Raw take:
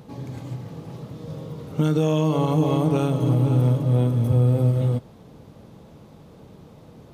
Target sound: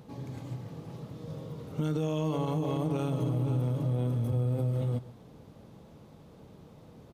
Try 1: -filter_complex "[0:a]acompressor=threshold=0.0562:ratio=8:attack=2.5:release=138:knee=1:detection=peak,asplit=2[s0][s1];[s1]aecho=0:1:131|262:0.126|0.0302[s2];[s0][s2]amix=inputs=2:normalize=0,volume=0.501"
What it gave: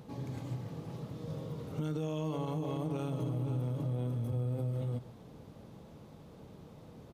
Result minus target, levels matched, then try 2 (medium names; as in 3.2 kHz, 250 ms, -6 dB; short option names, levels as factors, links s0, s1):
compression: peak gain reduction +5 dB
-filter_complex "[0:a]acompressor=threshold=0.112:ratio=8:attack=2.5:release=138:knee=1:detection=peak,asplit=2[s0][s1];[s1]aecho=0:1:131|262:0.126|0.0302[s2];[s0][s2]amix=inputs=2:normalize=0,volume=0.501"